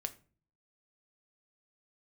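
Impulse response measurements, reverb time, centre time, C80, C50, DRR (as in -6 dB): 0.40 s, 4 ms, 22.0 dB, 17.0 dB, 7.5 dB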